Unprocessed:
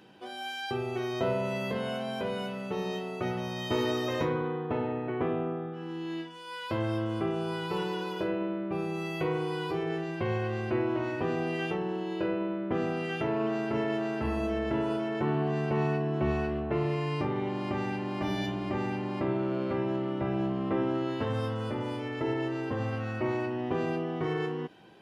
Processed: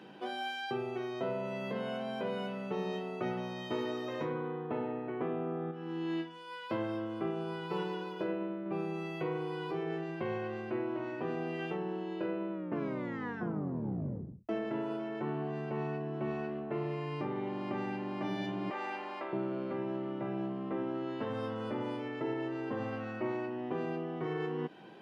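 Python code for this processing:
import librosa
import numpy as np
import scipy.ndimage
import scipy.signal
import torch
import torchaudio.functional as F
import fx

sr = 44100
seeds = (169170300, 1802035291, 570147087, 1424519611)

y = fx.upward_expand(x, sr, threshold_db=-42.0, expansion=1.5, at=(5.71, 8.66))
y = fx.highpass(y, sr, hz=720.0, slope=12, at=(18.7, 19.33))
y = fx.edit(y, sr, fx.tape_stop(start_s=12.52, length_s=1.97), tone=tone)
y = scipy.signal.sosfilt(scipy.signal.butter(4, 140.0, 'highpass', fs=sr, output='sos'), y)
y = fx.high_shelf(y, sr, hz=4900.0, db=-11.5)
y = fx.rider(y, sr, range_db=10, speed_s=0.5)
y = y * 10.0 ** (-4.5 / 20.0)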